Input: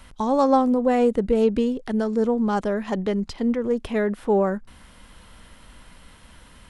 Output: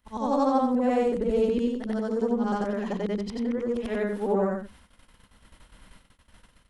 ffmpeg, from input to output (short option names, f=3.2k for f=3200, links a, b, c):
-af "afftfilt=real='re':imag='-im':win_size=8192:overlap=0.75,agate=range=-47dB:threshold=-50dB:ratio=16:detection=peak"